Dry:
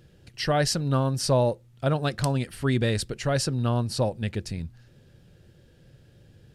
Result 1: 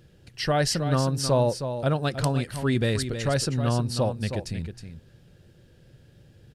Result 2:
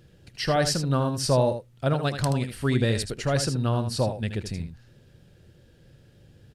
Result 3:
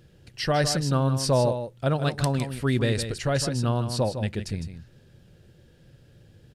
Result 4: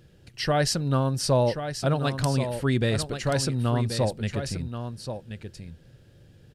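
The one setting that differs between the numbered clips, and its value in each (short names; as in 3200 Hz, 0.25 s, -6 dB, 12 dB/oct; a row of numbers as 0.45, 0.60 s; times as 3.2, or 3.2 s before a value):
echo, time: 316, 78, 157, 1081 ms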